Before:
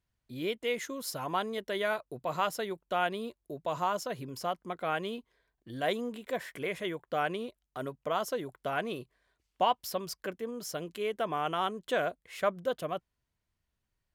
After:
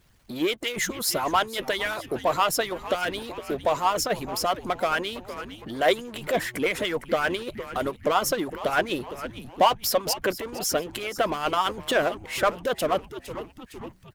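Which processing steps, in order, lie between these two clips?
echo with shifted repeats 459 ms, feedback 48%, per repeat −120 Hz, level −16.5 dB
power curve on the samples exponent 0.7
harmonic and percussive parts rebalanced harmonic −16 dB
level +8 dB

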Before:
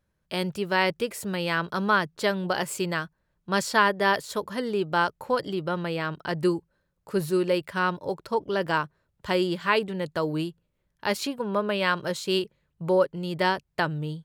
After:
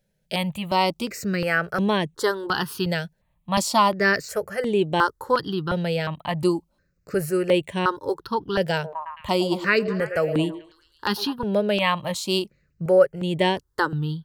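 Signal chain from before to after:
0:08.73–0:11.33: echo through a band-pass that steps 109 ms, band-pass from 490 Hz, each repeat 0.7 octaves, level −6 dB
step-sequenced phaser 2.8 Hz 300–4,900 Hz
level +6.5 dB

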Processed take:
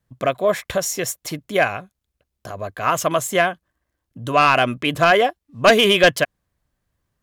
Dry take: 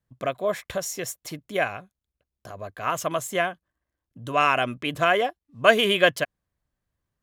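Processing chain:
sine wavefolder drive 7 dB, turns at −2 dBFS
level −3.5 dB

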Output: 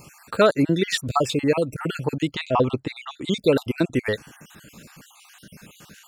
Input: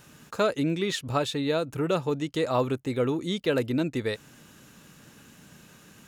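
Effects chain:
time-frequency cells dropped at random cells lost 47%
0:02.33–0:03.31: low-pass filter 4,000 Hz → 7,500 Hz 12 dB per octave
level +8 dB

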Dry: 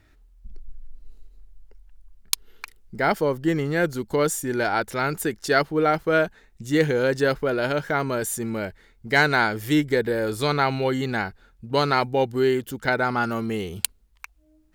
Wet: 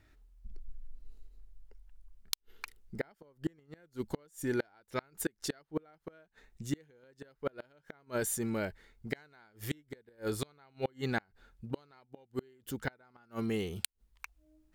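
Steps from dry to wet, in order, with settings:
gate with flip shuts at −15 dBFS, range −34 dB
level −6 dB

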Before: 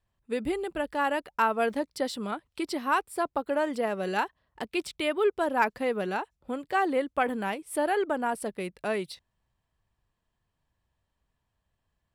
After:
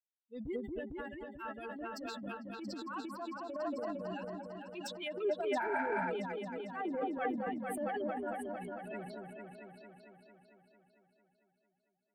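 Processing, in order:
spectral dynamics exaggerated over time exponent 3
0:00.91–0:01.79: parametric band 680 Hz −13 dB 2.3 octaves
rotating-speaker cabinet horn 1.1 Hz, later 5.5 Hz, at 0:02.23
parametric band 10,000 Hz −8.5 dB 0.72 octaves
on a send: echo whose low-pass opens from repeat to repeat 225 ms, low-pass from 750 Hz, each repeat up 2 octaves, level −3 dB
0:05.62–0:06.03: on the sum: healed spectral selection 610–8,100 Hz after
0:06.74–0:07.47: mains-hum notches 50/100/150/200/250/300/350/400/450/500 Hz
transient designer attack −9 dB, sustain +8 dB
level −2.5 dB

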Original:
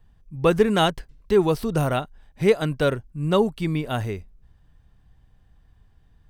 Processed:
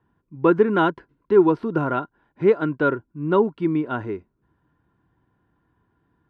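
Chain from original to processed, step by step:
band-pass filter 120–2,300 Hz
hollow resonant body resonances 330/990/1,400 Hz, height 13 dB, ringing for 25 ms
level −5 dB

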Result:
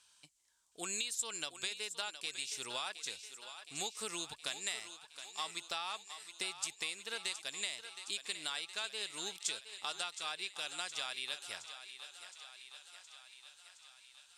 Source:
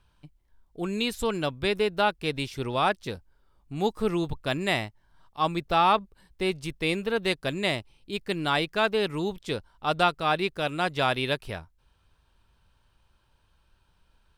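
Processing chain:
first difference
downward compressor 6 to 1, threshold −50 dBFS, peak gain reduction 18.5 dB
low-pass with resonance 7,500 Hz, resonance Q 2.7
feedback echo with a high-pass in the loop 717 ms, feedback 68%, high-pass 460 Hz, level −10.5 dB
level +11 dB

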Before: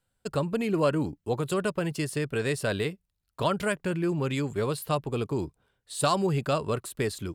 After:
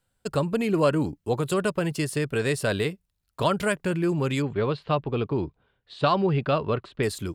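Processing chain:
0:04.42–0:07.03: low-pass filter 3,800 Hz 24 dB per octave
level +3 dB

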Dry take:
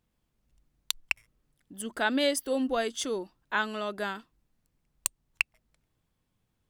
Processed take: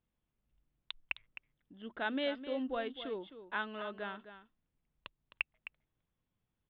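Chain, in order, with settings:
Butterworth low-pass 3,700 Hz 72 dB per octave
single-tap delay 260 ms −12 dB
level −8.5 dB

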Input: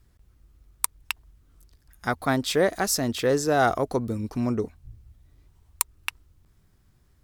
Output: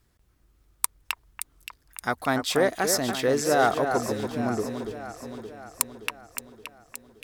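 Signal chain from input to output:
low-shelf EQ 160 Hz −9.5 dB
delay that swaps between a low-pass and a high-pass 286 ms, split 2,100 Hz, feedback 73%, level −6.5 dB

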